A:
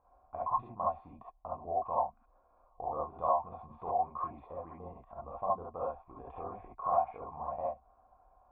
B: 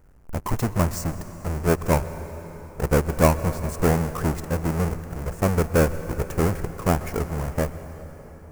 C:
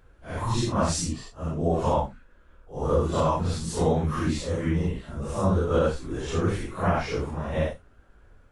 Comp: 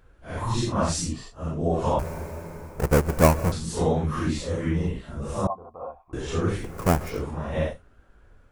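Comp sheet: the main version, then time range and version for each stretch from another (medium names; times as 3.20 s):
C
1.99–3.52 s: from B
5.47–6.13 s: from A
6.69–7.11 s: from B, crossfade 0.24 s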